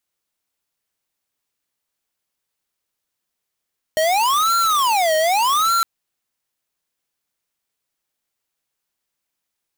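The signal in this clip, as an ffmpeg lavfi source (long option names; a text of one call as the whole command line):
ffmpeg -f lavfi -i "aevalsrc='0.141*(2*lt(mod((997.5*t-372.5/(2*PI*0.84)*sin(2*PI*0.84*t)),1),0.5)-1)':duration=1.86:sample_rate=44100" out.wav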